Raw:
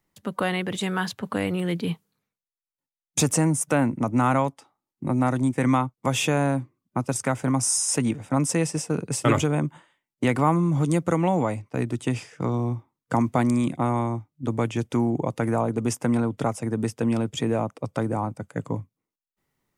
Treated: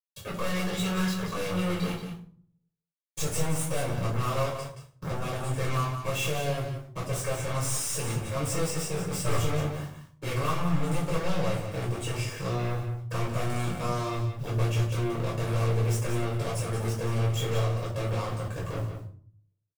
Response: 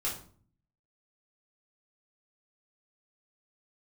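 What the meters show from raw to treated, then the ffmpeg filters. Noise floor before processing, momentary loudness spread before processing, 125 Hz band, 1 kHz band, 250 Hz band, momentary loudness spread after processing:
under -85 dBFS, 8 LU, -1.5 dB, -6.5 dB, -10.0 dB, 7 LU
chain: -filter_complex "[0:a]lowshelf=f=89:g=4.5,aecho=1:1:1.8:0.73,acrusher=bits=8:mix=0:aa=0.000001,aeval=exprs='(tanh(20*val(0)+0.75)-tanh(0.75))/20':c=same,alimiter=level_in=3.5dB:limit=-24dB:level=0:latency=1:release=154,volume=-3.5dB,aeval=exprs='0.0422*(cos(1*acos(clip(val(0)/0.0422,-1,1)))-cos(1*PI/2))+0.00841*(cos(2*acos(clip(val(0)/0.0422,-1,1)))-cos(2*PI/2))+0.00841*(cos(3*acos(clip(val(0)/0.0422,-1,1)))-cos(3*PI/2))+0.015*(cos(5*acos(clip(val(0)/0.0422,-1,1)))-cos(5*PI/2))':c=same,aecho=1:1:177:0.355[a];[1:a]atrim=start_sample=2205[b];[a][b]afir=irnorm=-1:irlink=0"

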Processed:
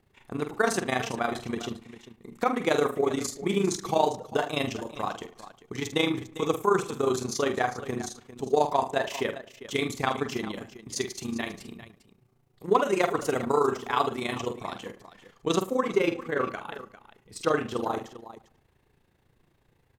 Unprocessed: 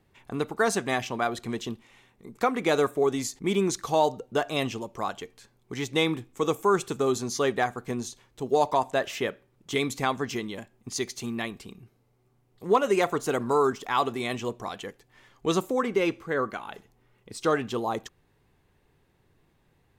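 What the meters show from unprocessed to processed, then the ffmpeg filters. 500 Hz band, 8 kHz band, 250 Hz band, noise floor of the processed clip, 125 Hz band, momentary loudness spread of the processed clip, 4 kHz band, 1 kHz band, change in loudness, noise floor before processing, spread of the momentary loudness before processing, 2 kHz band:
-1.0 dB, -1.0 dB, -0.5 dB, -67 dBFS, -1.0 dB, 15 LU, -0.5 dB, -0.5 dB, -1.0 dB, -67 dBFS, 14 LU, -0.5 dB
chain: -filter_complex "[0:a]asplit=2[a][b];[b]adelay=94,lowpass=f=2.5k:p=1,volume=-17dB,asplit=2[c][d];[d]adelay=94,lowpass=f=2.5k:p=1,volume=0.42,asplit=2[e][f];[f]adelay=94,lowpass=f=2.5k:p=1,volume=0.42,asplit=2[g][h];[h]adelay=94,lowpass=f=2.5k:p=1,volume=0.42[i];[c][e][g][i]amix=inputs=4:normalize=0[j];[a][j]amix=inputs=2:normalize=0,tremolo=f=28:d=0.788,asplit=2[k][l];[l]aecho=0:1:47|400:0.376|0.188[m];[k][m]amix=inputs=2:normalize=0,volume=2dB"

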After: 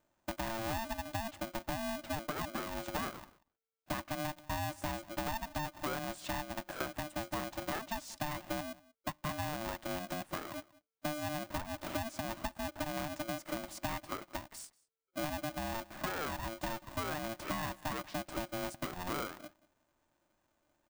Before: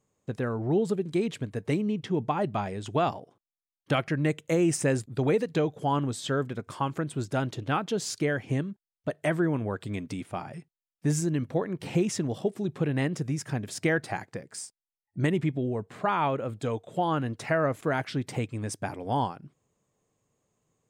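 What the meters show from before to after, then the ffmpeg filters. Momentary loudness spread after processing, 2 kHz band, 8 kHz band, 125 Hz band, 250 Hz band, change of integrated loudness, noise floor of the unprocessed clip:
5 LU, -6.0 dB, -7.0 dB, -15.0 dB, -12.5 dB, -10.5 dB, under -85 dBFS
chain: -filter_complex "[0:a]deesser=0.65,highshelf=f=1.6k:t=q:w=1.5:g=-6.5,acompressor=threshold=-34dB:ratio=6,asplit=2[a][b];[b]adelay=186.6,volume=-22dB,highshelf=f=4k:g=-4.2[c];[a][c]amix=inputs=2:normalize=0,aeval=exprs='val(0)*sgn(sin(2*PI*450*n/s))':c=same,volume=-1.5dB"

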